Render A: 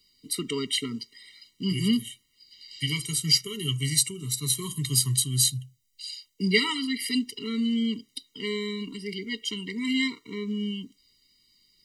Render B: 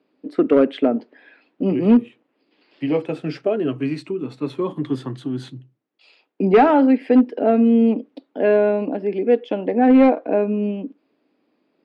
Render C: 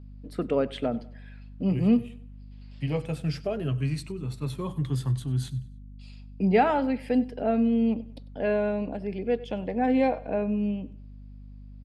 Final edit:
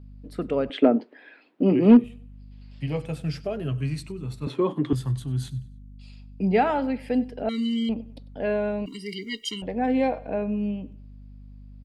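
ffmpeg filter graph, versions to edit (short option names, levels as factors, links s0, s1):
-filter_complex "[1:a]asplit=2[s0][s1];[0:a]asplit=2[s2][s3];[2:a]asplit=5[s4][s5][s6][s7][s8];[s4]atrim=end=0.702[s9];[s0]atrim=start=0.698:end=2.042[s10];[s5]atrim=start=2.038:end=4.472[s11];[s1]atrim=start=4.468:end=4.932[s12];[s6]atrim=start=4.928:end=7.492[s13];[s2]atrim=start=7.488:end=7.892[s14];[s7]atrim=start=7.888:end=8.862[s15];[s3]atrim=start=8.858:end=9.622[s16];[s8]atrim=start=9.618[s17];[s9][s10]acrossfade=d=0.004:c1=hsin:c2=hsin[s18];[s18][s11]acrossfade=d=0.004:c1=hsin:c2=hsin[s19];[s19][s12]acrossfade=d=0.004:c1=hsin:c2=hsin[s20];[s20][s13]acrossfade=d=0.004:c1=hsin:c2=hsin[s21];[s21][s14]acrossfade=d=0.004:c1=hsin:c2=hsin[s22];[s22][s15]acrossfade=d=0.004:c1=hsin:c2=hsin[s23];[s23][s16]acrossfade=d=0.004:c1=hsin:c2=hsin[s24];[s24][s17]acrossfade=d=0.004:c1=hsin:c2=hsin"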